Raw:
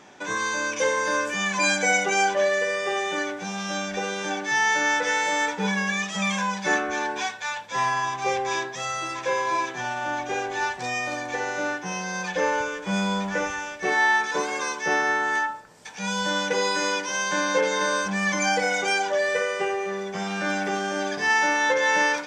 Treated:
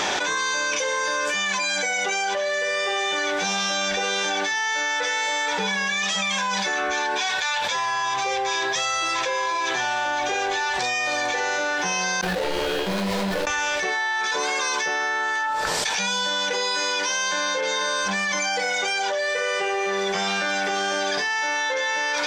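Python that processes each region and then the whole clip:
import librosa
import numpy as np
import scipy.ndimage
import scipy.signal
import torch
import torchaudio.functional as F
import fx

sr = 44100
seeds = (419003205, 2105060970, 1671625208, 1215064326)

y = fx.chain(x, sr, fx.median_filter(points=41),
    fx.comb_fb(f0_hz=180.0, decay_s=1.8, harmonics='all', damping=0.0, mix_pct=80),
    fx.detune_double(cents=41), at=(12.21, 13.47))
y = fx.graphic_eq(y, sr, hz=(125, 250, 4000), db=(-9, -8, 7))
y = fx.env_flatten(y, sr, amount_pct=100)
y = y * 10.0 ** (-6.5 / 20.0)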